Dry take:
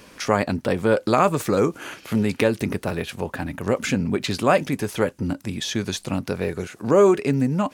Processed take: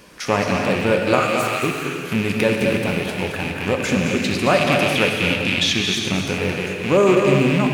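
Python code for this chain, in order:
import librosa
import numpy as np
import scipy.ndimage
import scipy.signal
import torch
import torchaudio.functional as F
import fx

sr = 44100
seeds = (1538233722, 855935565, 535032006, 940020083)

y = fx.rattle_buzz(x, sr, strikes_db=-32.0, level_db=-16.0)
y = fx.steep_highpass(y, sr, hz=1200.0, slope=96, at=(1.19, 1.62), fade=0.02)
y = fx.peak_eq(y, sr, hz=3300.0, db=10.0, octaves=1.4, at=(4.57, 5.73))
y = y + 10.0 ** (-8.0 / 20.0) * np.pad(y, (int(220 * sr / 1000.0), 0))[:len(y)]
y = fx.rev_gated(y, sr, seeds[0], gate_ms=420, shape='flat', drr_db=1.5)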